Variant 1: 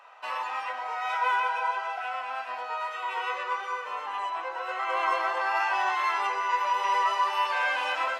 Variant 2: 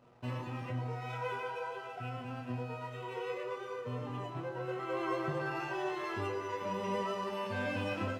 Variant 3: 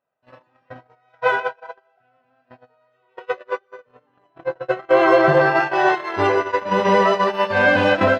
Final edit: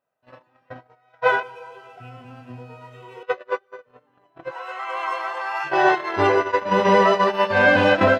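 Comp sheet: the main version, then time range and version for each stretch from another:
3
0:01.43–0:03.23: punch in from 2
0:04.48–0:05.68: punch in from 1, crossfade 0.10 s

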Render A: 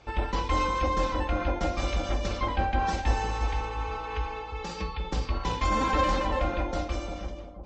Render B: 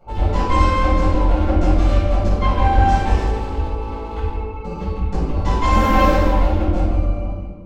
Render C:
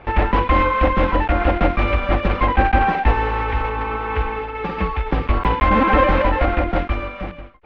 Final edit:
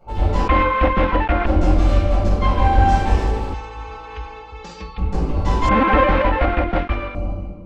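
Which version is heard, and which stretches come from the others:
B
0:00.48–0:01.46: punch in from C
0:03.54–0:04.98: punch in from A
0:05.69–0:07.15: punch in from C

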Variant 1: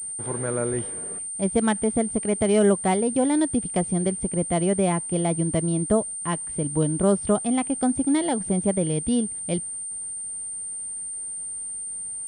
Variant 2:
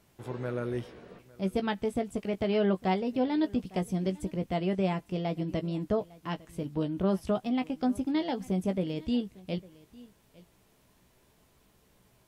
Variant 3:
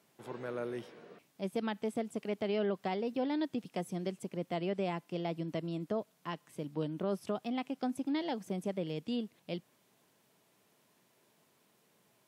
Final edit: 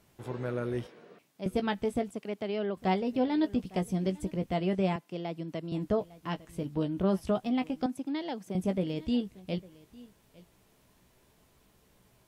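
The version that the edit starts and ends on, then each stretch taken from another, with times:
2
0:00.87–0:01.46: punch in from 3
0:02.11–0:02.77: punch in from 3
0:04.96–0:05.72: punch in from 3
0:07.86–0:08.55: punch in from 3
not used: 1

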